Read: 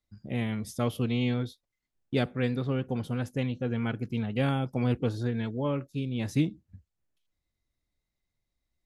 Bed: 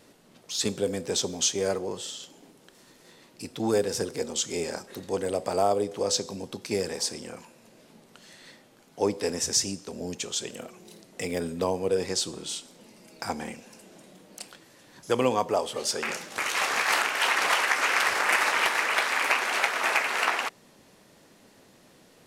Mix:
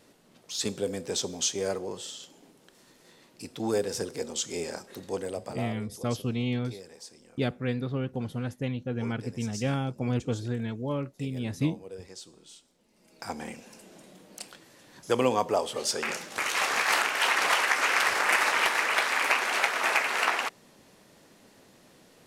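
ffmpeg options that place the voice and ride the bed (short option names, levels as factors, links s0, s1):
-filter_complex "[0:a]adelay=5250,volume=0.841[s0];[1:a]volume=4.73,afade=t=out:st=5.11:d=0.59:silence=0.199526,afade=t=in:st=12.88:d=0.75:silence=0.149624[s1];[s0][s1]amix=inputs=2:normalize=0"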